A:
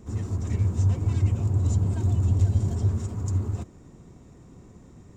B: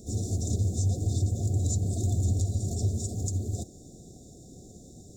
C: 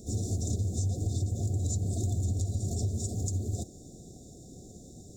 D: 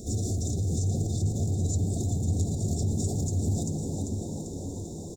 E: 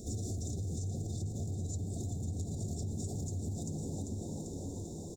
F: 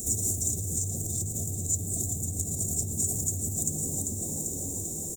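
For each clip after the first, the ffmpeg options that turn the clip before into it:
-af "afftfilt=real='re*(1-between(b*sr/4096,780,3400))':imag='im*(1-between(b*sr/4096,780,3400))':win_size=4096:overlap=0.75,bass=f=250:g=-4,treble=f=4000:g=11,alimiter=limit=0.0944:level=0:latency=1:release=412,volume=1.33"
-af "acompressor=threshold=0.0501:ratio=6"
-filter_complex "[0:a]asplit=2[s0][s1];[s1]asplit=7[s2][s3][s4][s5][s6][s7][s8];[s2]adelay=393,afreqshift=60,volume=0.335[s9];[s3]adelay=786,afreqshift=120,volume=0.188[s10];[s4]adelay=1179,afreqshift=180,volume=0.105[s11];[s5]adelay=1572,afreqshift=240,volume=0.0589[s12];[s6]adelay=1965,afreqshift=300,volume=0.0331[s13];[s7]adelay=2358,afreqshift=360,volume=0.0184[s14];[s8]adelay=2751,afreqshift=420,volume=0.0104[s15];[s9][s10][s11][s12][s13][s14][s15]amix=inputs=7:normalize=0[s16];[s0][s16]amix=inputs=2:normalize=0,alimiter=level_in=1.58:limit=0.0631:level=0:latency=1:release=36,volume=0.631,asplit=2[s17][s18];[s18]adelay=645,lowpass=f=2000:p=1,volume=0.447,asplit=2[s19][s20];[s20]adelay=645,lowpass=f=2000:p=1,volume=0.52,asplit=2[s21][s22];[s22]adelay=645,lowpass=f=2000:p=1,volume=0.52,asplit=2[s23][s24];[s24]adelay=645,lowpass=f=2000:p=1,volume=0.52,asplit=2[s25][s26];[s26]adelay=645,lowpass=f=2000:p=1,volume=0.52,asplit=2[s27][s28];[s28]adelay=645,lowpass=f=2000:p=1,volume=0.52[s29];[s19][s21][s23][s25][s27][s29]amix=inputs=6:normalize=0[s30];[s17][s30]amix=inputs=2:normalize=0,volume=2.11"
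-af "acompressor=threshold=0.0355:ratio=6,volume=0.562"
-af "aexciter=amount=9.3:drive=8.2:freq=6900,volume=1.33"

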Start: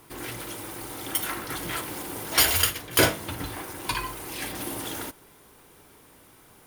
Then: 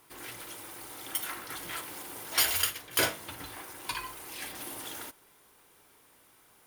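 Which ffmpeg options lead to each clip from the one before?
-af "lowshelf=f=450:g=-9.5,volume=0.531"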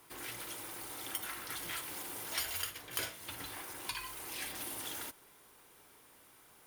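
-filter_complex "[0:a]acrossover=split=120|1800[s0][s1][s2];[s0]acompressor=threshold=0.00141:ratio=4[s3];[s1]acompressor=threshold=0.00447:ratio=4[s4];[s2]acompressor=threshold=0.0141:ratio=4[s5];[s3][s4][s5]amix=inputs=3:normalize=0"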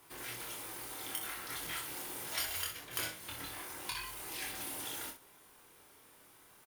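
-af "aecho=1:1:25|63:0.631|0.355,volume=0.841"

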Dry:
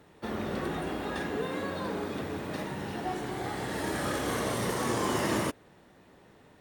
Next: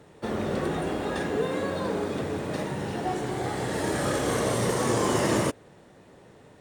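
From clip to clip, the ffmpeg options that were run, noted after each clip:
-af "equalizer=f=125:t=o:w=1:g=5,equalizer=f=500:t=o:w=1:g=5,equalizer=f=8000:t=o:w=1:g=7,equalizer=f=16000:t=o:w=1:g=-6,volume=1.26"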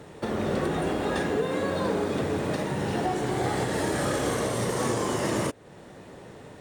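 -filter_complex "[0:a]asplit=2[s0][s1];[s1]acompressor=threshold=0.0178:ratio=6,volume=1.26[s2];[s0][s2]amix=inputs=2:normalize=0,alimiter=limit=0.15:level=0:latency=1:release=441"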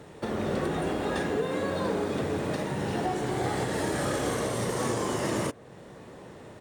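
-filter_complex "[0:a]asplit=2[s0][s1];[s1]adelay=1166,volume=0.0794,highshelf=f=4000:g=-26.2[s2];[s0][s2]amix=inputs=2:normalize=0,volume=0.794"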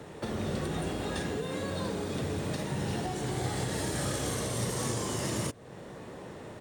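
-filter_complex "[0:a]acrossover=split=170|3000[s0][s1][s2];[s1]acompressor=threshold=0.01:ratio=2.5[s3];[s0][s3][s2]amix=inputs=3:normalize=0,volume=1.26"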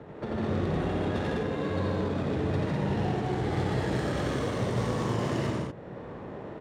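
-af "aecho=1:1:87.46|151.6|204.1:0.794|0.794|0.794,adynamicsmooth=sensitivity=2.5:basefreq=2000"

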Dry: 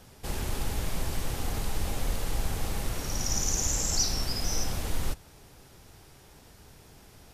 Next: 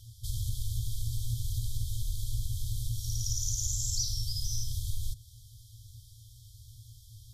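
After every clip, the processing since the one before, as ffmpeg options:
-af "afftfilt=real='re*(1-between(b*sr/4096,120,3100))':imag='im*(1-between(b*sr/4096,120,3100))':win_size=4096:overlap=0.75,equalizer=f=120:t=o:w=0.55:g=13.5,acompressor=threshold=0.0316:ratio=2"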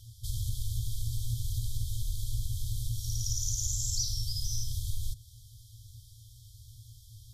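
-af anull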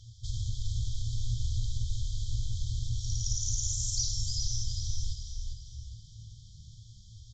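-filter_complex "[0:a]asplit=2[s0][s1];[s1]asplit=5[s2][s3][s4][s5][s6];[s2]adelay=402,afreqshift=-40,volume=0.501[s7];[s3]adelay=804,afreqshift=-80,volume=0.195[s8];[s4]adelay=1206,afreqshift=-120,volume=0.0759[s9];[s5]adelay=1608,afreqshift=-160,volume=0.0299[s10];[s6]adelay=2010,afreqshift=-200,volume=0.0116[s11];[s7][s8][s9][s10][s11]amix=inputs=5:normalize=0[s12];[s0][s12]amix=inputs=2:normalize=0,aresample=16000,aresample=44100"

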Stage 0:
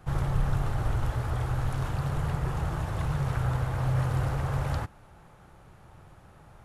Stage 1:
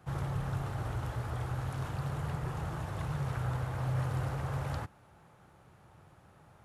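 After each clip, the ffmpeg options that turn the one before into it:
-af "highpass=77,volume=0.562"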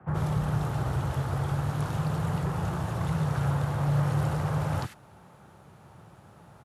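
-filter_complex "[0:a]afreqshift=15,acrossover=split=2000[s0][s1];[s1]adelay=80[s2];[s0][s2]amix=inputs=2:normalize=0,volume=2.24"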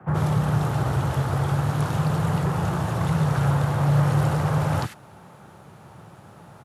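-af "highpass=84,volume=2.11"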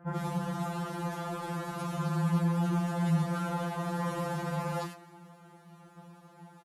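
-filter_complex "[0:a]asplit=5[s0][s1][s2][s3][s4];[s1]adelay=131,afreqshift=82,volume=0.0891[s5];[s2]adelay=262,afreqshift=164,volume=0.0507[s6];[s3]adelay=393,afreqshift=246,volume=0.0288[s7];[s4]adelay=524,afreqshift=328,volume=0.0166[s8];[s0][s5][s6][s7][s8]amix=inputs=5:normalize=0,afftfilt=real='re*2.83*eq(mod(b,8),0)':imag='im*2.83*eq(mod(b,8),0)':win_size=2048:overlap=0.75,volume=0.531"

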